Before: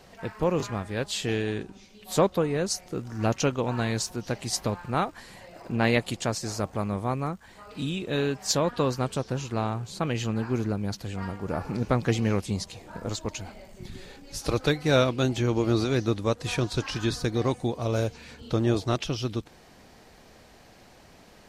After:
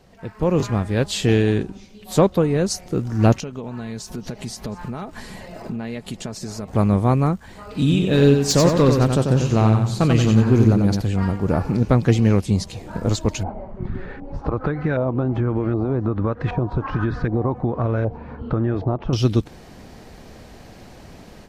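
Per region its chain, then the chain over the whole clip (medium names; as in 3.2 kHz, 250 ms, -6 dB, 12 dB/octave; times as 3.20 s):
3.40–6.68 s: compression, threshold -38 dBFS + comb 4.7 ms, depth 37% + delay 718 ms -20.5 dB
7.79–11.01 s: hard clipper -20 dBFS + feedback delay 92 ms, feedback 34%, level -5 dB
13.43–19.13 s: compression 12:1, threshold -29 dBFS + LFO low-pass saw up 1.3 Hz 790–1800 Hz
whole clip: level rider gain up to 11.5 dB; bass shelf 430 Hz +8.5 dB; trim -5.5 dB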